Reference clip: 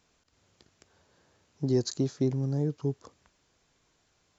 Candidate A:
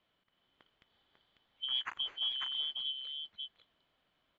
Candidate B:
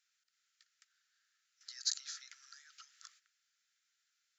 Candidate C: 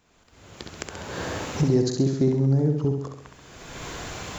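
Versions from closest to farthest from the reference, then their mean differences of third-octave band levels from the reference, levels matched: C, A, B; 6.0 dB, 14.5 dB, 19.5 dB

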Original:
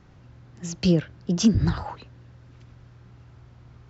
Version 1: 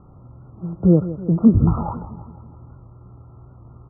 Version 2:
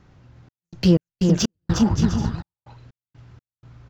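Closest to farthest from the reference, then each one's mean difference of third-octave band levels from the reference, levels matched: 1, 2; 5.0 dB, 8.5 dB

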